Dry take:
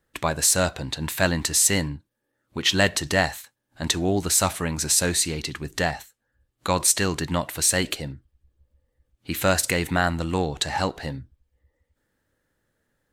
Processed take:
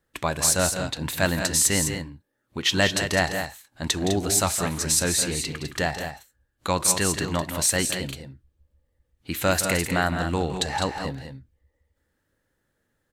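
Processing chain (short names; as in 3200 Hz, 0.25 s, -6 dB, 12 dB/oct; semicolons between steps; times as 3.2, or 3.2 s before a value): loudspeakers at several distances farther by 57 m -11 dB, 70 m -8 dB; gain -1.5 dB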